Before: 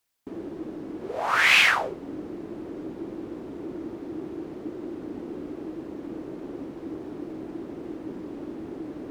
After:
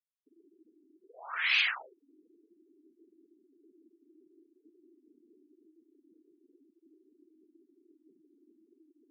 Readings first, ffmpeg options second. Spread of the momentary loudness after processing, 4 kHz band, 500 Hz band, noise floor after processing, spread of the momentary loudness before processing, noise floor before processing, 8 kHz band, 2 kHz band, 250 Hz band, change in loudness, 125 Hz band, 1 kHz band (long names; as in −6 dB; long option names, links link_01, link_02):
15 LU, −8.0 dB, −26.0 dB, −75 dBFS, 17 LU, −41 dBFS, below −20 dB, −10.5 dB, −28.0 dB, −0.5 dB, below −40 dB, −16.5 dB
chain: -af "afftfilt=real='re*gte(hypot(re,im),0.0794)':imag='im*gte(hypot(re,im),0.0794)':win_size=1024:overlap=0.75,aderivative"